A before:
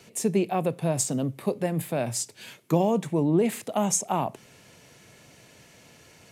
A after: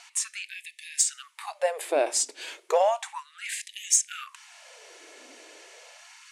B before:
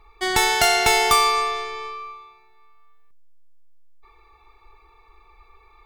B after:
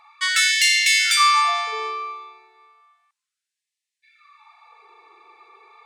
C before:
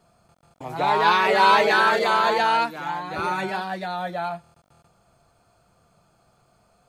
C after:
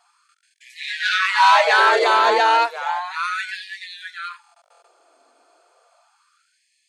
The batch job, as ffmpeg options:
-af "lowpass=f=9700:w=0.5412,lowpass=f=9700:w=1.3066,aeval=exprs='(tanh(3.55*val(0)+0.15)-tanh(0.15))/3.55':c=same,afftfilt=real='re*gte(b*sr/1024,250*pow(1700/250,0.5+0.5*sin(2*PI*0.33*pts/sr)))':imag='im*gte(b*sr/1024,250*pow(1700/250,0.5+0.5*sin(2*PI*0.33*pts/sr)))':win_size=1024:overlap=0.75,volume=1.88"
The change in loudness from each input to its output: -0.5 LU, +1.5 LU, +4.0 LU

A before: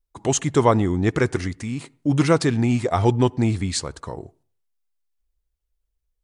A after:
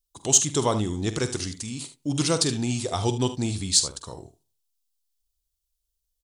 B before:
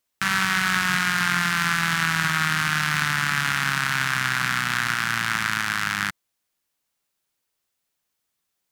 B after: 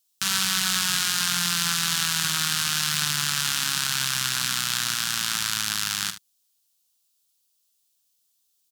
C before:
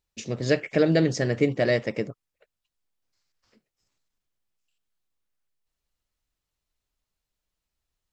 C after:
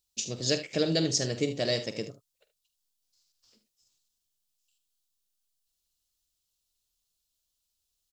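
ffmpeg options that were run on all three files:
-af "highshelf=f=3000:g=-7,aecho=1:1:47|75:0.224|0.211,aexciter=amount=7.4:drive=6.3:freq=3000,volume=0.447"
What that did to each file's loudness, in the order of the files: -3.0 LU, -1.0 LU, -4.5 LU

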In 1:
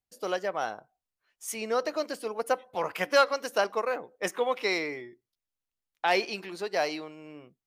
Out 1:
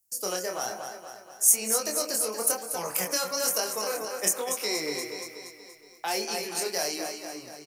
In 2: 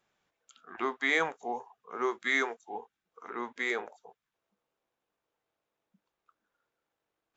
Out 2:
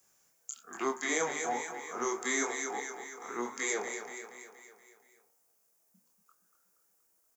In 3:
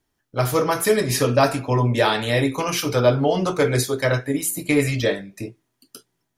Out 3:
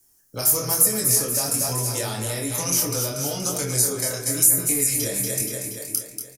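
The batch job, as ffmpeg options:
-filter_complex "[0:a]bandreject=f=77.01:t=h:w=4,bandreject=f=154.02:t=h:w=4,bandreject=f=231.03:t=h:w=4,bandreject=f=308.04:t=h:w=4,bandreject=f=385.05:t=h:w=4,bandreject=f=462.06:t=h:w=4,bandreject=f=539.07:t=h:w=4,bandreject=f=616.08:t=h:w=4,bandreject=f=693.09:t=h:w=4,bandreject=f=770.1:t=h:w=4,bandreject=f=847.11:t=h:w=4,bandreject=f=924.12:t=h:w=4,bandreject=f=1001.13:t=h:w=4,bandreject=f=1078.14:t=h:w=4,bandreject=f=1155.15:t=h:w=4,bandreject=f=1232.16:t=h:w=4,bandreject=f=1309.17:t=h:w=4,bandreject=f=1386.18:t=h:w=4,bandreject=f=1463.19:t=h:w=4,bandreject=f=1540.2:t=h:w=4,bandreject=f=1617.21:t=h:w=4,bandreject=f=1694.22:t=h:w=4,bandreject=f=1771.23:t=h:w=4,bandreject=f=1848.24:t=h:w=4,bandreject=f=1925.25:t=h:w=4,bandreject=f=2002.26:t=h:w=4,bandreject=f=2079.27:t=h:w=4,bandreject=f=2156.28:t=h:w=4,bandreject=f=2233.29:t=h:w=4,bandreject=f=2310.3:t=h:w=4,bandreject=f=2387.31:t=h:w=4,bandreject=f=2464.32:t=h:w=4,bandreject=f=2541.33:t=h:w=4,bandreject=f=2618.34:t=h:w=4,asplit=2[s0][s1];[s1]aecho=0:1:237|474|711|948|1185|1422:0.316|0.171|0.0922|0.0498|0.0269|0.0145[s2];[s0][s2]amix=inputs=2:normalize=0,acrossover=split=220|1100|2400[s3][s4][s5][s6];[s3]acompressor=threshold=0.0282:ratio=4[s7];[s4]acompressor=threshold=0.0282:ratio=4[s8];[s5]acompressor=threshold=0.00708:ratio=4[s9];[s6]acompressor=threshold=0.0141:ratio=4[s10];[s7][s8][s9][s10]amix=inputs=4:normalize=0,asplit=2[s11][s12];[s12]alimiter=limit=0.0668:level=0:latency=1,volume=1.41[s13];[s11][s13]amix=inputs=2:normalize=0,aexciter=amount=10.9:drive=4.1:freq=5300,flanger=delay=22.5:depth=5:speed=1.1,volume=0.668"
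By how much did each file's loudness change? +2.5 LU, -2.5 LU, 0.0 LU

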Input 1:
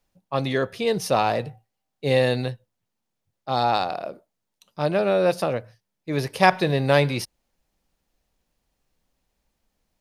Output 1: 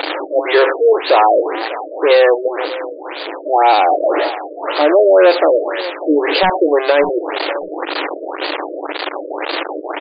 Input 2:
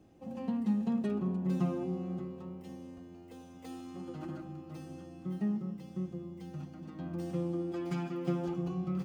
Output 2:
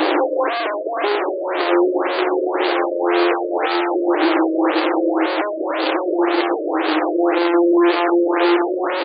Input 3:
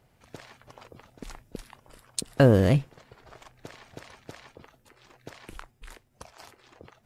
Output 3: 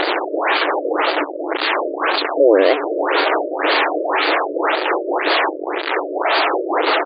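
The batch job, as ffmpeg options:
-filter_complex "[0:a]aeval=exprs='val(0)+0.5*0.158*sgn(val(0))':c=same,afftfilt=real='re*between(b*sr/4096,290,8500)':imag='im*between(b*sr/4096,290,8500)':win_size=4096:overlap=0.75,aeval=exprs='(mod(1.41*val(0)+1,2)-1)/1.41':c=same,asplit=2[s0][s1];[s1]adelay=594,lowpass=f=1700:p=1,volume=0.158,asplit=2[s2][s3];[s3]adelay=594,lowpass=f=1700:p=1,volume=0.22[s4];[s2][s4]amix=inputs=2:normalize=0[s5];[s0][s5]amix=inputs=2:normalize=0,alimiter=level_in=2.82:limit=0.891:release=50:level=0:latency=1,afftfilt=real='re*lt(b*sr/1024,630*pow(4900/630,0.5+0.5*sin(2*PI*1.9*pts/sr)))':imag='im*lt(b*sr/1024,630*pow(4900/630,0.5+0.5*sin(2*PI*1.9*pts/sr)))':win_size=1024:overlap=0.75,volume=0.891"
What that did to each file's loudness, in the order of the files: +8.5 LU, +18.5 LU, +5.0 LU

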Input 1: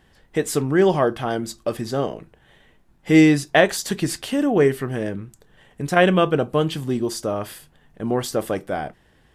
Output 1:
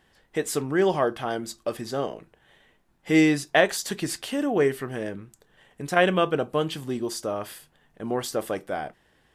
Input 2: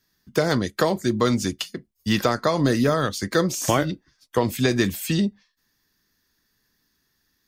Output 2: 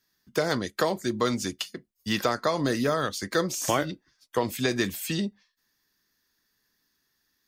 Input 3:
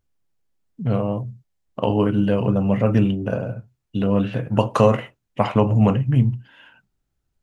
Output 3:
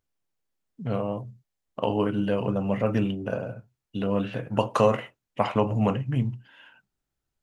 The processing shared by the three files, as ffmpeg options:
-af "lowshelf=f=230:g=-8,volume=0.708"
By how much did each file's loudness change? -5.0 LU, -5.0 LU, -6.5 LU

